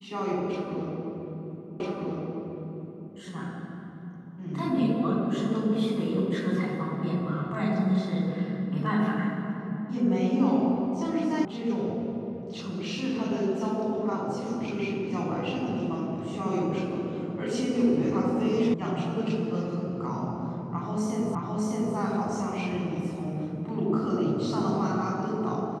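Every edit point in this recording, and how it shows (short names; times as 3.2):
1.8 repeat of the last 1.3 s
11.45 sound cut off
18.74 sound cut off
21.35 repeat of the last 0.61 s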